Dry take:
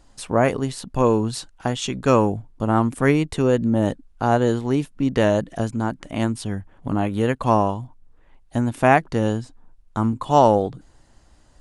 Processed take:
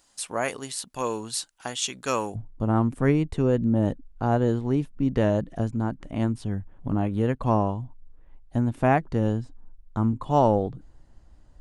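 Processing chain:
spectral tilt +3.5 dB per octave, from 0:02.34 −2 dB per octave
level −7 dB

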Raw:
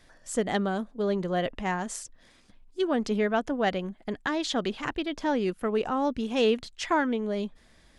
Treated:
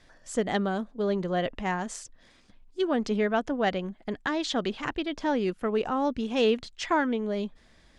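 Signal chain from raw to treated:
low-pass filter 7,800 Hz 12 dB per octave

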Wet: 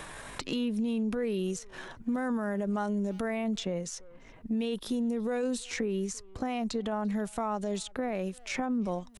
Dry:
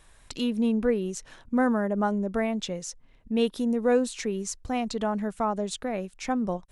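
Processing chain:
tempo change 0.73×
brickwall limiter −24 dBFS, peak gain reduction 12 dB
far-end echo of a speakerphone 340 ms, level −25 dB
multiband upward and downward compressor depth 70%

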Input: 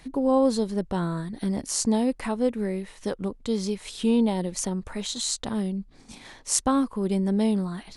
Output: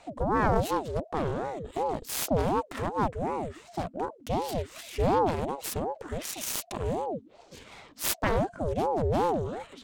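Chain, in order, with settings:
phase distortion by the signal itself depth 0.86 ms
speed change −19%
ring modulator whose carrier an LFO sweeps 470 Hz, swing 50%, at 2.7 Hz

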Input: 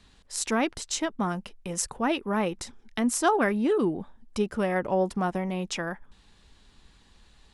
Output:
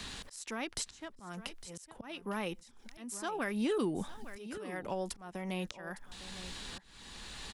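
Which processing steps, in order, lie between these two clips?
high-shelf EQ 2,200 Hz +11.5 dB
downward compressor 8 to 1, threshold −34 dBFS, peak gain reduction 19 dB
volume swells 794 ms
on a send: single-tap delay 857 ms −17.5 dB
on the sum: multiband upward and downward compressor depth 40%
level +7.5 dB

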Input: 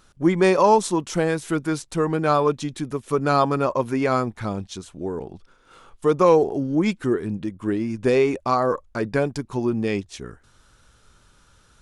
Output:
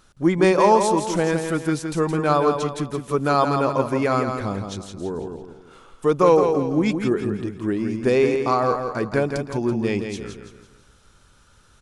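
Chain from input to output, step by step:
repeating echo 167 ms, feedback 40%, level −6.5 dB

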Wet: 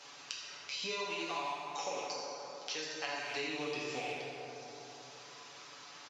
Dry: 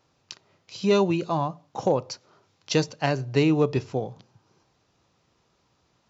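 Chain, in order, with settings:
loose part that buzzes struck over −38 dBFS, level −32 dBFS
0:01.04–0:03.48: high-pass filter 220 Hz 12 dB per octave
first difference
comb filter 7 ms
downward compressor, threshold −45 dBFS, peak gain reduction 16.5 dB
high-frequency loss of the air 95 metres
dense smooth reverb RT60 2 s, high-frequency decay 0.55×, DRR −5.5 dB
multiband upward and downward compressor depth 70%
level +6.5 dB

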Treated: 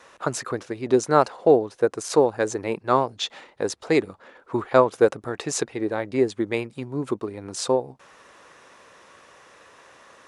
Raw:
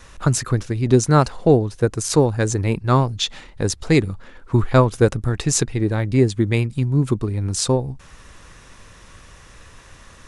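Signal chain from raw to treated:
Chebyshev high-pass filter 550 Hz, order 2
spectral tilt −2.5 dB per octave

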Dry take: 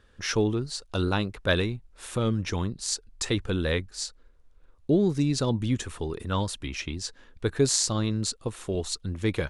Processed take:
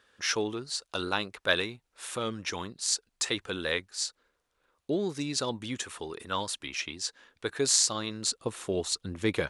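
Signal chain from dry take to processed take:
high-pass filter 820 Hz 6 dB per octave, from 0:08.26 270 Hz
level +1.5 dB

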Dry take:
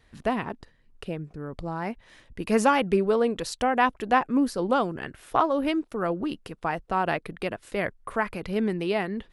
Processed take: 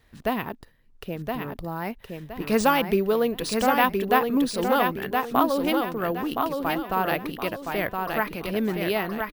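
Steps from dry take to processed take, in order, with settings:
dynamic equaliser 3,800 Hz, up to +6 dB, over −48 dBFS, Q 1.3
decimation without filtering 3×
on a send: repeating echo 1,018 ms, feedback 34%, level −4.5 dB

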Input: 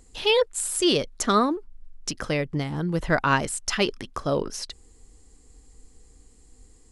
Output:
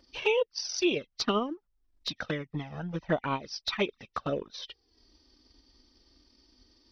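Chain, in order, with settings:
hearing-aid frequency compression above 1,800 Hz 1.5 to 1
high-pass filter 210 Hz 6 dB per octave
in parallel at +2 dB: downward compressor 4 to 1, threshold −40 dBFS, peak gain reduction 19.5 dB
on the sum: transient designer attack +6 dB, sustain −9 dB
flanger swept by the level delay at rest 3.4 ms, full sweep at −14.5 dBFS
level −6.5 dB

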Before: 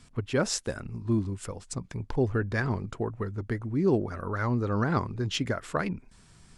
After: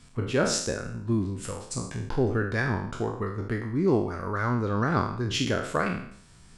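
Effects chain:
peak hold with a decay on every bin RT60 0.62 s

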